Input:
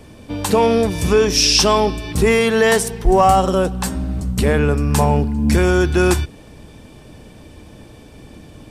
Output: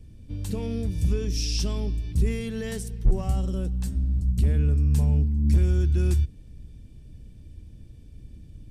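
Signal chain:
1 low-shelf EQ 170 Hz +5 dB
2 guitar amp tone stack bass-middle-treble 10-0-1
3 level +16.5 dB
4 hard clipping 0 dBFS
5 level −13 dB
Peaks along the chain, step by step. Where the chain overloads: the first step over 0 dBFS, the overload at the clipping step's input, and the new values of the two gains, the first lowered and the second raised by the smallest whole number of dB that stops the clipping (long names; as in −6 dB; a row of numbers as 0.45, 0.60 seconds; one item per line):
+0.5, −6.5, +10.0, 0.0, −13.0 dBFS
step 1, 10.0 dB
step 3 +6.5 dB, step 5 −3 dB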